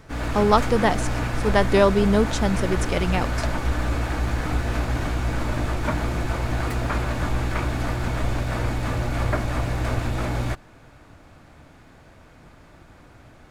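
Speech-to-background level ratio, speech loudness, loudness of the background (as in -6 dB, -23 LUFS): 4.5 dB, -22.0 LUFS, -26.5 LUFS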